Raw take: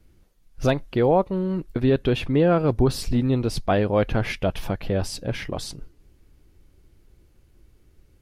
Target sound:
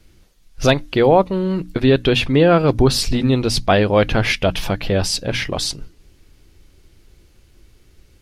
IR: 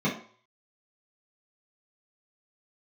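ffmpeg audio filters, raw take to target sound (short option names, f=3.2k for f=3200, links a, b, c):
-af "equalizer=f=4.4k:t=o:w=2.6:g=8,bandreject=f=60:t=h:w=6,bandreject=f=120:t=h:w=6,bandreject=f=180:t=h:w=6,bandreject=f=240:t=h:w=6,bandreject=f=300:t=h:w=6,volume=5.5dB"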